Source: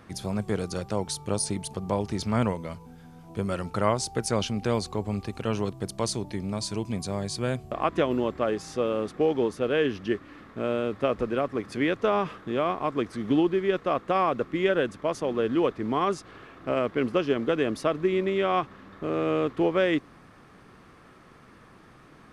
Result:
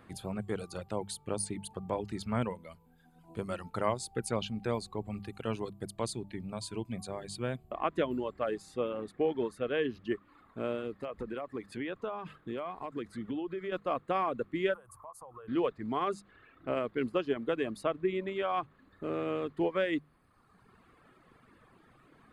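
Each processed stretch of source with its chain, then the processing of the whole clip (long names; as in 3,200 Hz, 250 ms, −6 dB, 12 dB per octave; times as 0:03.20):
0:10.92–0:13.72: downward compressor 5 to 1, threshold −26 dBFS + hard clipping −20 dBFS
0:14.74–0:15.48: drawn EQ curve 130 Hz 0 dB, 220 Hz −19 dB, 450 Hz −8 dB, 1,100 Hz +9 dB, 1,700 Hz −8 dB, 3,500 Hz −13 dB, 5,300 Hz −3 dB, 11,000 Hz +13 dB + downward compressor 4 to 1, threshold −39 dBFS
whole clip: reverb reduction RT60 1.3 s; parametric band 5,700 Hz −13.5 dB 0.34 octaves; mains-hum notches 50/100/150/200 Hz; level −5.5 dB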